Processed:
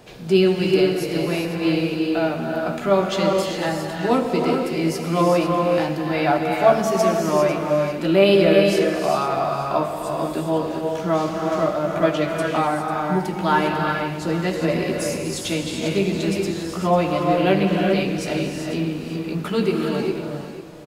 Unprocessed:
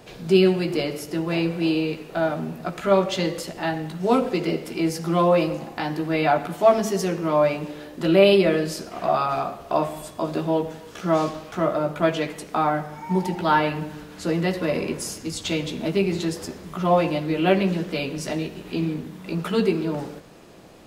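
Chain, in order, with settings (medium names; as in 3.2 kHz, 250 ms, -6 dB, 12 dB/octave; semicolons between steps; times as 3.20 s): delay 496 ms -12.5 dB; gated-style reverb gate 430 ms rising, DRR 1 dB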